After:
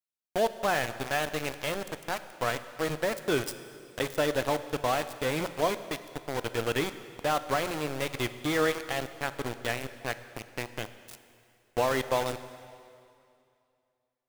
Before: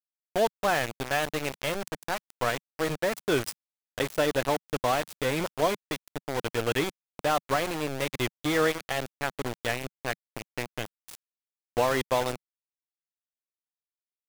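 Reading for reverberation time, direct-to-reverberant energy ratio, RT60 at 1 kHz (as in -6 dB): 2.5 s, 11.5 dB, 2.5 s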